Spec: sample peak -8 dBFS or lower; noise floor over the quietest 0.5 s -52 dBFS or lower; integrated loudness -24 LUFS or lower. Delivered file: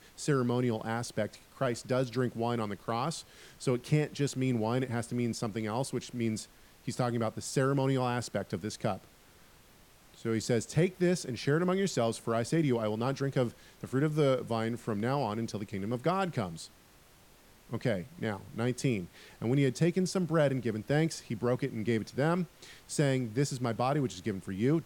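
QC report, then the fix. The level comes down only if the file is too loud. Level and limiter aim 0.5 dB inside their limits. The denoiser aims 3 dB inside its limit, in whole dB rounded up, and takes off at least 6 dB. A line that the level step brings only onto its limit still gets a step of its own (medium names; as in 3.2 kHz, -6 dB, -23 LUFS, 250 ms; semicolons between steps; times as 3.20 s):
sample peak -14.5 dBFS: pass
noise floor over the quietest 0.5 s -59 dBFS: pass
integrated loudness -32.0 LUFS: pass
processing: none needed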